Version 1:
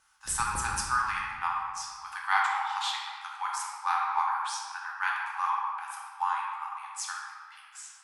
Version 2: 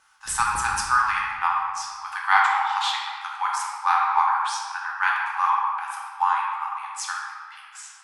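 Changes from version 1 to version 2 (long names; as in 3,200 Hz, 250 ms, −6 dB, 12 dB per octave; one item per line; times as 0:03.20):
speech +8.0 dB
master: add high-shelf EQ 5,500 Hz −7 dB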